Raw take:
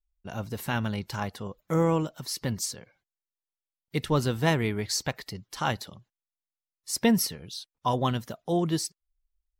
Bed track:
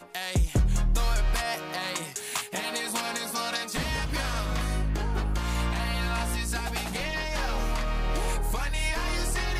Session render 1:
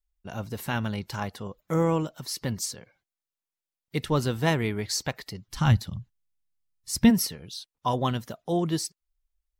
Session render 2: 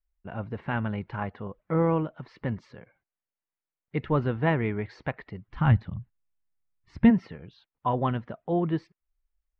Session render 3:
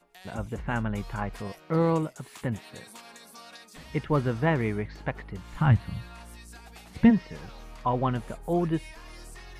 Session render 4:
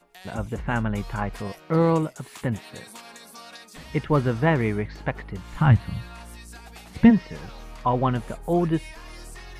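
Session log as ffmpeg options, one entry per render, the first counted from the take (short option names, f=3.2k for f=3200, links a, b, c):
-filter_complex "[0:a]asplit=3[a][b][c];[a]afade=t=out:st=5.47:d=0.02[d];[b]asubboost=boost=11.5:cutoff=140,afade=t=in:st=5.47:d=0.02,afade=t=out:st=7.09:d=0.02[e];[c]afade=t=in:st=7.09:d=0.02[f];[d][e][f]amix=inputs=3:normalize=0"
-af "lowpass=f=2.3k:w=0.5412,lowpass=f=2.3k:w=1.3066"
-filter_complex "[1:a]volume=-17dB[a];[0:a][a]amix=inputs=2:normalize=0"
-af "volume=4dB"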